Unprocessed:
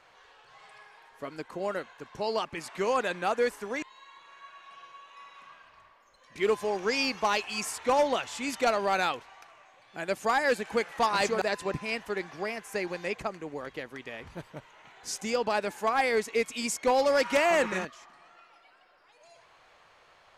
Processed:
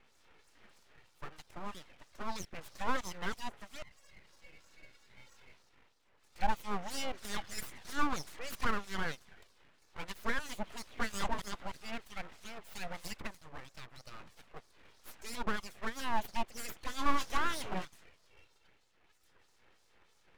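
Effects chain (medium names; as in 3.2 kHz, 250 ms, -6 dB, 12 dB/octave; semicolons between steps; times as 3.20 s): 12.80–13.41 s: peaking EQ 12 kHz +13.5 dB 1.4 oct; touch-sensitive flanger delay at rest 2.4 ms, full sweep at -24.5 dBFS; harmonic tremolo 3.1 Hz, depth 100%, crossover 1.9 kHz; full-wave rectifier; 16.83–17.31 s: doubling 21 ms -10 dB; trim +1.5 dB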